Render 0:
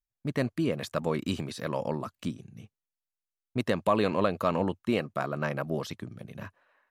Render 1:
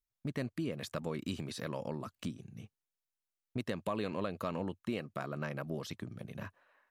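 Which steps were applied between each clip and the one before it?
dynamic EQ 840 Hz, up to -4 dB, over -41 dBFS, Q 0.78; compressor 2:1, threshold -36 dBFS, peak gain reduction 8 dB; gain -1.5 dB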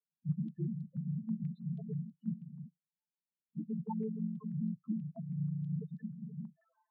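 chord vocoder minor triad, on D3; loudest bins only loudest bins 2; stepped low-pass 6.2 Hz 940–4200 Hz; gain +6.5 dB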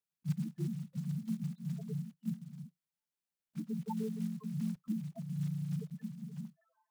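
block floating point 5-bit

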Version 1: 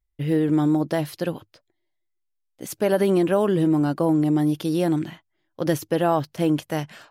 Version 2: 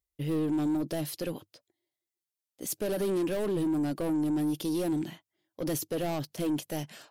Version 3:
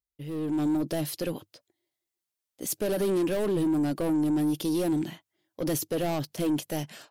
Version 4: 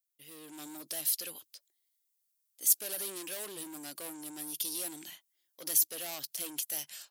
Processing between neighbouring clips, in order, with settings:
HPF 370 Hz 6 dB/oct; soft clip -26 dBFS, distortion -8 dB; bell 1400 Hz -11 dB 2.7 oct; gain +3.5 dB
AGC gain up to 10 dB; gain -7 dB
differentiator; gain +5 dB

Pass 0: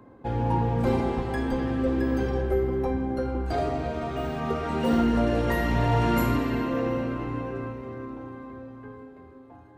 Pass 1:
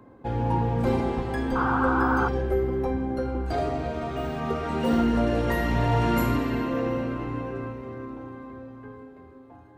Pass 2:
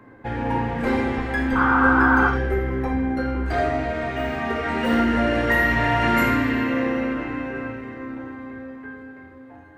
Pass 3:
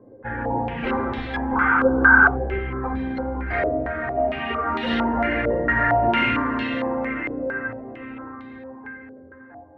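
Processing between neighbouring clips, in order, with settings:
painted sound noise, 1.55–2.29, 710–1600 Hz -26 dBFS
bell 1900 Hz +12.5 dB 0.94 oct; on a send at -2.5 dB: reverb, pre-delay 9 ms
bin magnitudes rounded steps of 15 dB; stepped low-pass 4.4 Hz 530–3700 Hz; gain -3.5 dB

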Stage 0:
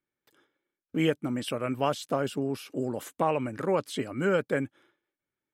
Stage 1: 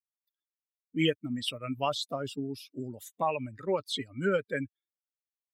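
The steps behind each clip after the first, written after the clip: per-bin expansion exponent 2; bell 3700 Hz +11.5 dB 0.79 oct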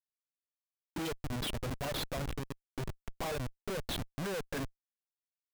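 envelope flanger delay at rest 6.5 ms, full sweep at -24 dBFS; Schmitt trigger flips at -38.5 dBFS; gain +1 dB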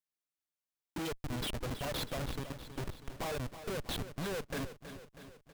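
feedback echo 0.322 s, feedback 59%, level -11.5 dB; gain -1 dB

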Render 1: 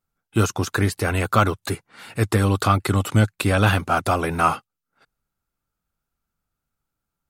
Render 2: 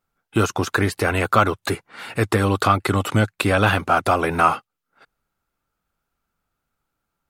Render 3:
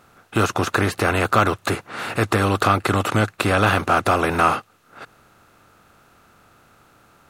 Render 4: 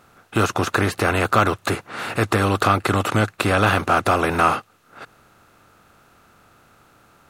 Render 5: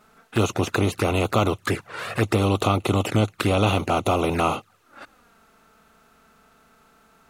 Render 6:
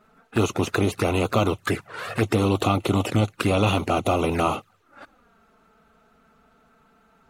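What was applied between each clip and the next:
tone controls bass -6 dB, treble -6 dB; in parallel at +2 dB: compressor, threshold -27 dBFS, peak gain reduction 14 dB
per-bin compression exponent 0.6; gain -3 dB
nothing audible
envelope flanger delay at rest 4.8 ms, full sweep at -16.5 dBFS
bin magnitudes rounded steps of 15 dB; mismatched tape noise reduction decoder only

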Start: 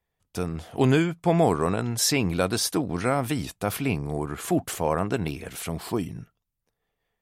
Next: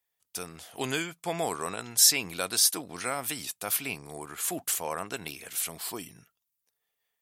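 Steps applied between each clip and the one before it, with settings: tilt +4 dB/oct; gain -6.5 dB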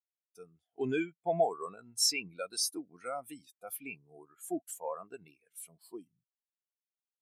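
soft clip -21 dBFS, distortion -9 dB; spectral expander 2.5:1; gain +4.5 dB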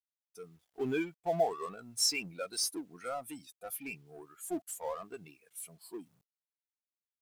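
G.711 law mismatch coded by mu; gain -2 dB

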